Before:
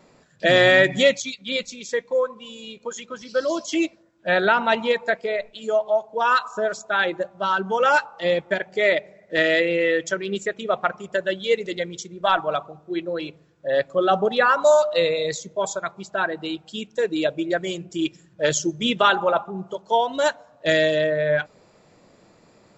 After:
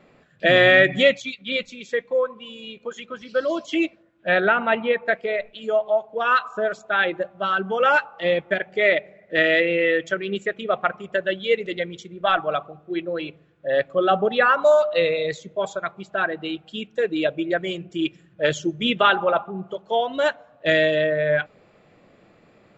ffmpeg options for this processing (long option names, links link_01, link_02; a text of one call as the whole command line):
ffmpeg -i in.wav -filter_complex "[0:a]asettb=1/sr,asplit=3[link_01][link_02][link_03];[link_01]atrim=end=4.404[link_04];[link_02]atrim=start=4.4:end=5.08,asetpts=PTS-STARTPTS,afade=type=in:duration=0.004:curve=qsin,afade=type=out:start_time=0.676:duration=0.004:curve=qsin,lowpass=2600[link_05];[link_03]atrim=start=5.076[link_06];[link_04][link_05]acrossfade=duration=0.004:curve1=hsin:curve2=qsin[link_07];[link_07][link_06]acrossfade=duration=0.004:curve1=qsin:curve2=hsin,highshelf=frequency=4000:width_type=q:width=1.5:gain=-10,bandreject=frequency=940:width=8.4" out.wav